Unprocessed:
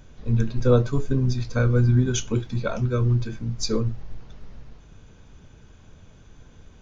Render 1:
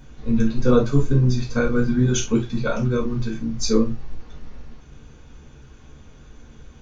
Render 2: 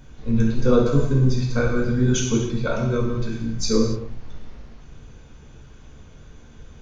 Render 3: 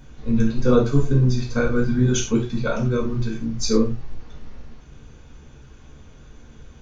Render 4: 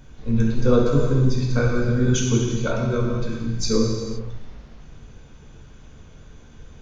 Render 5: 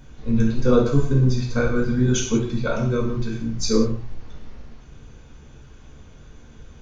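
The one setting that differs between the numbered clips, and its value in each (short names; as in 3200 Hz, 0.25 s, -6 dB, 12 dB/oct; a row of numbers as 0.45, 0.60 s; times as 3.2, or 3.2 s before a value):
non-linear reverb, gate: 90, 320, 130, 540, 210 ms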